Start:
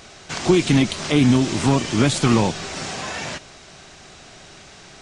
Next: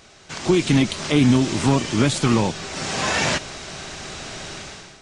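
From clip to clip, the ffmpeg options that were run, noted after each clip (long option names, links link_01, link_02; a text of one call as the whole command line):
ffmpeg -i in.wav -af "bandreject=frequency=720:width=23,dynaudnorm=framelen=180:gausssize=5:maxgain=15.5dB,volume=-5.5dB" out.wav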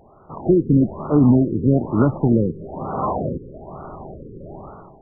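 ffmpeg -i in.wav -af "highshelf=frequency=1700:width_type=q:width=1.5:gain=-13,afftfilt=real='re*lt(b*sr/1024,510*pow(1500/510,0.5+0.5*sin(2*PI*1.1*pts/sr)))':imag='im*lt(b*sr/1024,510*pow(1500/510,0.5+0.5*sin(2*PI*1.1*pts/sr)))':win_size=1024:overlap=0.75,volume=2dB" out.wav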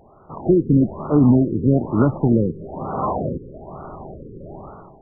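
ffmpeg -i in.wav -af anull out.wav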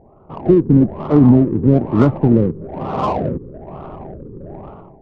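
ffmpeg -i in.wav -af "adynamicsmooth=sensitivity=2:basefreq=850,volume=4dB" out.wav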